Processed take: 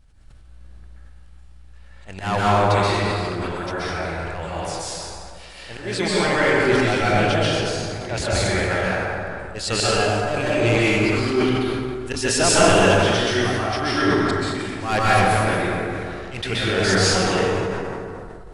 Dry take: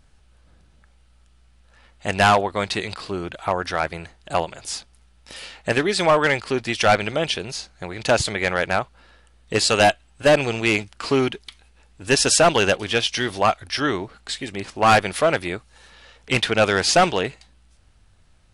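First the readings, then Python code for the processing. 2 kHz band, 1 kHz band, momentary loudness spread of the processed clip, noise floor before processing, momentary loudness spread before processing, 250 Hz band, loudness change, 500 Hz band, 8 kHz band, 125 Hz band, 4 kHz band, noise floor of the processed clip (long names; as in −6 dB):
+1.0 dB, −0.5 dB, 13 LU, −56 dBFS, 14 LU, +4.0 dB, +0.5 dB, +0.5 dB, 0.0 dB, +6.0 dB, −0.5 dB, −42 dBFS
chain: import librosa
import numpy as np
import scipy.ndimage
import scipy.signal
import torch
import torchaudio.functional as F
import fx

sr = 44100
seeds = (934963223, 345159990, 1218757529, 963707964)

y = fx.low_shelf(x, sr, hz=100.0, db=10.0)
y = fx.auto_swell(y, sr, attack_ms=160.0)
y = fx.rev_plate(y, sr, seeds[0], rt60_s=2.4, hf_ratio=0.5, predelay_ms=115, drr_db=-9.0)
y = fx.sustainer(y, sr, db_per_s=20.0)
y = y * librosa.db_to_amplitude(-7.0)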